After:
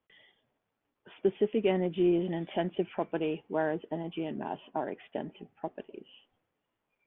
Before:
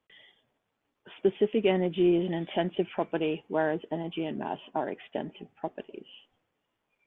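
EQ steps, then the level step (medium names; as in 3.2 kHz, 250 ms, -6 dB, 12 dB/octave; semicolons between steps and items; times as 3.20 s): distance through air 190 m; -2.0 dB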